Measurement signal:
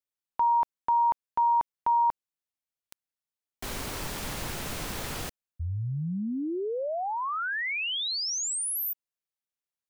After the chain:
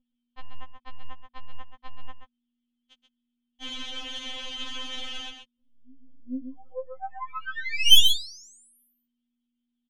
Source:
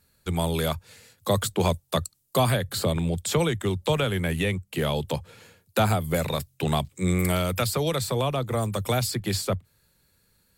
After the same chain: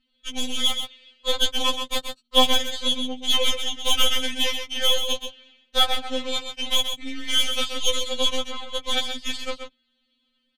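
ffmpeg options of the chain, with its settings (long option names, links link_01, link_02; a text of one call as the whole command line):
ffmpeg -i in.wav -filter_complex "[0:a]lowpass=frequency=3200:width_type=q:width=13,equalizer=frequency=78:width=2.1:gain=-11,aeval=exprs='val(0)+0.00141*(sin(2*PI*60*n/s)+sin(2*PI*2*60*n/s)/2+sin(2*PI*3*60*n/s)/3+sin(2*PI*4*60*n/s)/4+sin(2*PI*5*60*n/s)/5)':channel_layout=same,aeval=exprs='0.75*(cos(1*acos(clip(val(0)/0.75,-1,1)))-cos(1*PI/2))+0.168*(cos(2*acos(clip(val(0)/0.75,-1,1)))-cos(2*PI/2))+0.119*(cos(4*acos(clip(val(0)/0.75,-1,1)))-cos(4*PI/2))+0.119*(cos(6*acos(clip(val(0)/0.75,-1,1)))-cos(6*PI/2))+0.0531*(cos(7*acos(clip(val(0)/0.75,-1,1)))-cos(7*PI/2))':channel_layout=same,asplit=2[link_01][link_02];[link_02]aecho=0:1:130:0.422[link_03];[link_01][link_03]amix=inputs=2:normalize=0,afftfilt=real='re*3.46*eq(mod(b,12),0)':imag='im*3.46*eq(mod(b,12),0)':win_size=2048:overlap=0.75" out.wav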